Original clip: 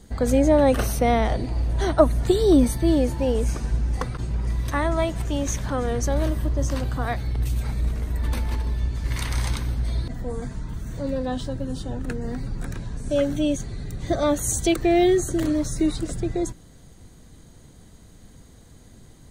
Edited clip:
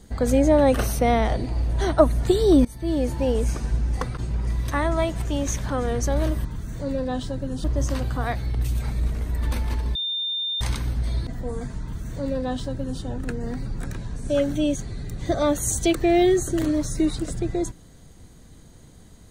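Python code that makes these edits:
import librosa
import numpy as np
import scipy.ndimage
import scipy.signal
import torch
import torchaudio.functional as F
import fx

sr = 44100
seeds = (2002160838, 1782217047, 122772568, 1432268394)

y = fx.edit(x, sr, fx.fade_in_from(start_s=2.65, length_s=0.51, floor_db=-21.0),
    fx.bleep(start_s=8.76, length_s=0.66, hz=3610.0, db=-24.0),
    fx.duplicate(start_s=10.63, length_s=1.19, to_s=6.45), tone=tone)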